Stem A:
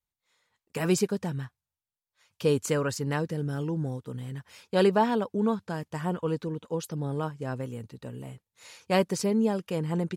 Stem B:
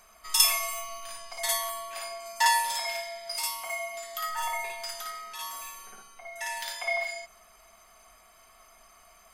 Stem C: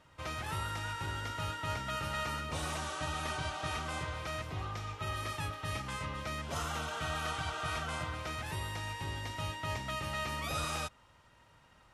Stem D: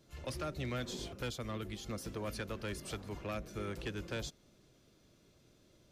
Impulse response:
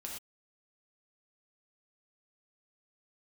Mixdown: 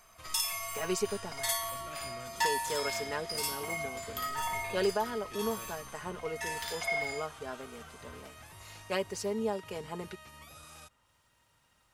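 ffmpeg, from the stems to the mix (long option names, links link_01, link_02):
-filter_complex "[0:a]highpass=370,aecho=1:1:4.8:0.59,volume=-5.5dB[link_01];[1:a]volume=-3dB[link_02];[2:a]aemphasis=mode=production:type=75kf,alimiter=level_in=5.5dB:limit=-24dB:level=0:latency=1,volume=-5.5dB,adynamicequalizer=threshold=0.00158:dfrequency=2700:dqfactor=0.7:tfrequency=2700:tqfactor=0.7:attack=5:release=100:ratio=0.375:range=2.5:mode=cutabove:tftype=highshelf,volume=-9.5dB[link_03];[3:a]adelay=1450,volume=-11dB[link_04];[link_01][link_02][link_03][link_04]amix=inputs=4:normalize=0,alimiter=limit=-18dB:level=0:latency=1:release=488"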